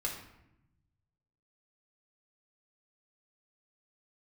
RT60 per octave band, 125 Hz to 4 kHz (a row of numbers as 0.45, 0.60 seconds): 1.9, 1.3, 0.90, 0.80, 0.80, 0.55 seconds